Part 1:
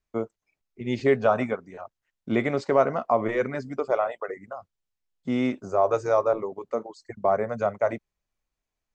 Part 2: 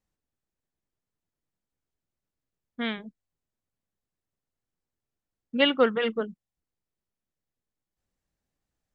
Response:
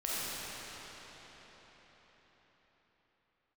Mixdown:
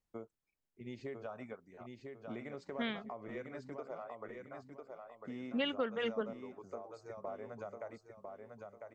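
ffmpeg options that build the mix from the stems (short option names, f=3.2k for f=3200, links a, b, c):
-filter_complex "[0:a]acompressor=threshold=-27dB:ratio=6,volume=-14.5dB,asplit=2[a][b];[b]volume=-5dB[c];[1:a]volume=-5.5dB[d];[c]aecho=0:1:1000|2000|3000|4000|5000:1|0.33|0.109|0.0359|0.0119[e];[a][d][e]amix=inputs=3:normalize=0,alimiter=level_in=1.5dB:limit=-24dB:level=0:latency=1:release=397,volume=-1.5dB"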